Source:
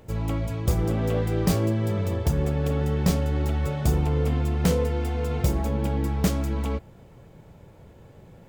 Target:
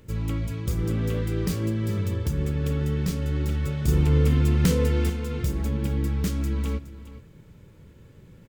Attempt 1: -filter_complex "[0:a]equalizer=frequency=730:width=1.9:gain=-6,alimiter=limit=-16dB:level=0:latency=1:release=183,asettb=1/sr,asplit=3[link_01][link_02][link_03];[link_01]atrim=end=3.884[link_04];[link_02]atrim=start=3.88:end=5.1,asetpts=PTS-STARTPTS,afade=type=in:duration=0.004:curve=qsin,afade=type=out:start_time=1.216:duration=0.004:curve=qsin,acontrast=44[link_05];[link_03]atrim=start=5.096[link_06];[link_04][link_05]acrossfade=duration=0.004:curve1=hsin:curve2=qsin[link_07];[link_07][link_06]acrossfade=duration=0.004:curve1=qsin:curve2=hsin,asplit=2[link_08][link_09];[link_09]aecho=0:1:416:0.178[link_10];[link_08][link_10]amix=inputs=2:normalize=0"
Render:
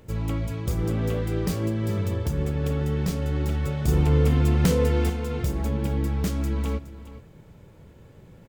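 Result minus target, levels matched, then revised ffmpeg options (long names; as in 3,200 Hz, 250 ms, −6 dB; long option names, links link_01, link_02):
1,000 Hz band +4.0 dB
-filter_complex "[0:a]equalizer=frequency=730:width=1.9:gain=-16,alimiter=limit=-16dB:level=0:latency=1:release=183,asettb=1/sr,asplit=3[link_01][link_02][link_03];[link_01]atrim=end=3.884[link_04];[link_02]atrim=start=3.88:end=5.1,asetpts=PTS-STARTPTS,afade=type=in:duration=0.004:curve=qsin,afade=type=out:start_time=1.216:duration=0.004:curve=qsin,acontrast=44[link_05];[link_03]atrim=start=5.096[link_06];[link_04][link_05]acrossfade=duration=0.004:curve1=hsin:curve2=qsin[link_07];[link_07][link_06]acrossfade=duration=0.004:curve1=qsin:curve2=hsin,asplit=2[link_08][link_09];[link_09]aecho=0:1:416:0.178[link_10];[link_08][link_10]amix=inputs=2:normalize=0"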